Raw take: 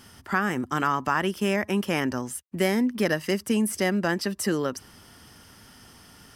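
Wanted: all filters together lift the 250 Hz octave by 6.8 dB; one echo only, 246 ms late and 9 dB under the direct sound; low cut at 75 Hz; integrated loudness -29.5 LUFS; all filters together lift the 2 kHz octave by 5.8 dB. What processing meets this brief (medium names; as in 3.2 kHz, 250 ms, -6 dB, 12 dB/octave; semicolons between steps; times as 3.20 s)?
high-pass 75 Hz; peaking EQ 250 Hz +8.5 dB; peaking EQ 2 kHz +7 dB; delay 246 ms -9 dB; trim -9 dB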